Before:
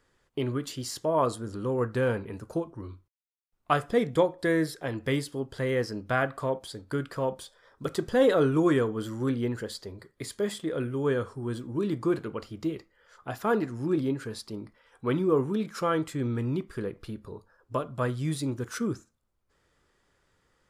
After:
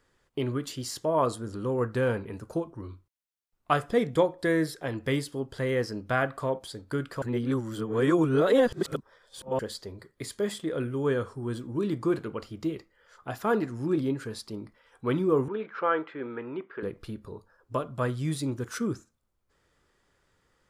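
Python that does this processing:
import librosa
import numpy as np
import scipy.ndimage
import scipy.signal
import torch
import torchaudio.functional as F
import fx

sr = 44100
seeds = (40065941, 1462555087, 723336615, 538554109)

y = fx.cabinet(x, sr, low_hz=400.0, low_slope=12, high_hz=2800.0, hz=(430.0, 900.0, 1500.0), db=(4, 3, 5), at=(15.48, 16.83))
y = fx.edit(y, sr, fx.reverse_span(start_s=7.22, length_s=2.37), tone=tone)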